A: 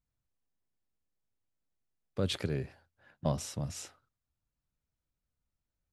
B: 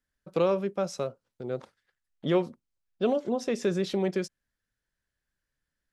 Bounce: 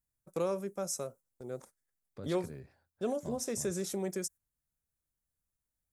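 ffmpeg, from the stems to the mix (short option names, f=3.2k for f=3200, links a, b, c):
-filter_complex "[0:a]acompressor=threshold=-53dB:ratio=1.5,volume=-4.5dB[a];[1:a]agate=range=-12dB:threshold=-46dB:ratio=16:detection=peak,aexciter=amount=6.5:drive=8.9:freq=6.3k,volume=-8dB[b];[a][b]amix=inputs=2:normalize=0,equalizer=f=2.9k:t=o:w=0.35:g=-7"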